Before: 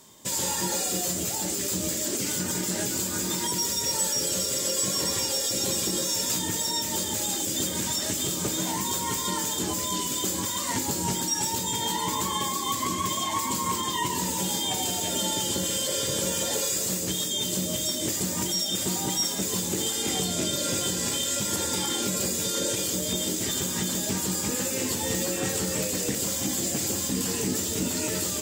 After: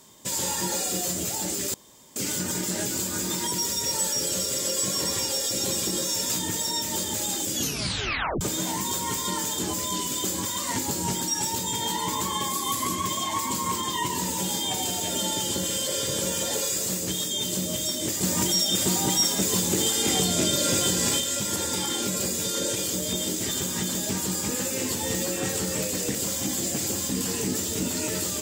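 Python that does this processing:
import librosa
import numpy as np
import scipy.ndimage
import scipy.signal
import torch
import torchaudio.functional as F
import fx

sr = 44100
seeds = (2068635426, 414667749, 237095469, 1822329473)

y = fx.peak_eq(x, sr, hz=11000.0, db=8.5, octaves=0.4, at=(12.5, 12.96))
y = fx.edit(y, sr, fx.room_tone_fill(start_s=1.74, length_s=0.42),
    fx.tape_stop(start_s=7.53, length_s=0.88),
    fx.clip_gain(start_s=18.23, length_s=2.97, db=4.0), tone=tone)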